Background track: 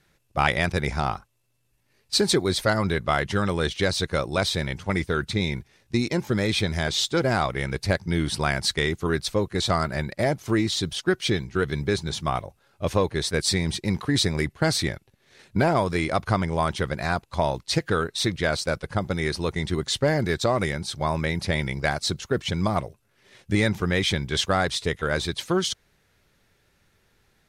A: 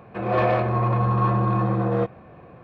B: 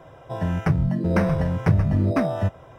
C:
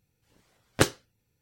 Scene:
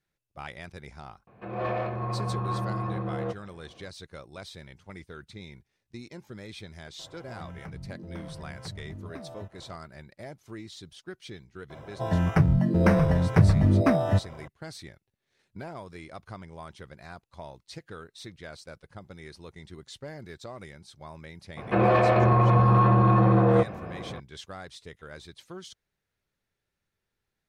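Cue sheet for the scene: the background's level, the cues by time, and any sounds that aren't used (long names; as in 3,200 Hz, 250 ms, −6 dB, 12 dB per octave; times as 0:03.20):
background track −19 dB
0:01.27: mix in A −9.5 dB
0:06.99: mix in B −6.5 dB + downward compressor 3 to 1, threshold −37 dBFS
0:11.70: mix in B
0:21.57: mix in A −11 dB + boost into a limiter +18 dB
not used: C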